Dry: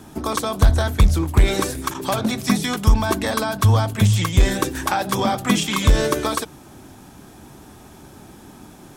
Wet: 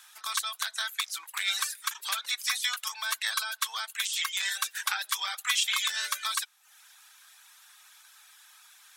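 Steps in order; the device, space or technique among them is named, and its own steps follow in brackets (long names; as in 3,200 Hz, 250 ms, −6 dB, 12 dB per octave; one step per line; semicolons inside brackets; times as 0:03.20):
headphones lying on a table (high-pass filter 1,400 Hz 24 dB per octave; parametric band 3,800 Hz +4.5 dB 0.26 octaves)
reverb reduction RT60 0.61 s
level −2 dB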